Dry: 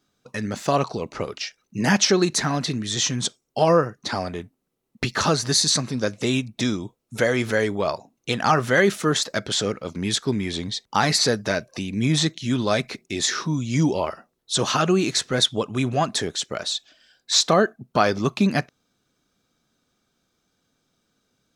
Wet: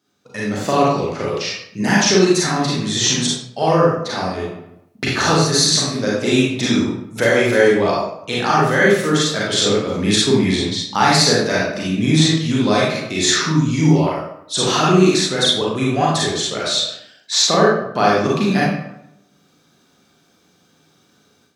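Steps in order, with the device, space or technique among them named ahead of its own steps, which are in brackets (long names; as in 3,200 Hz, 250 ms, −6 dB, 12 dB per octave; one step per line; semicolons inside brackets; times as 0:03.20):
far laptop microphone (convolution reverb RT60 0.75 s, pre-delay 33 ms, DRR −5.5 dB; high-pass filter 120 Hz; automatic gain control gain up to 9.5 dB)
level −1 dB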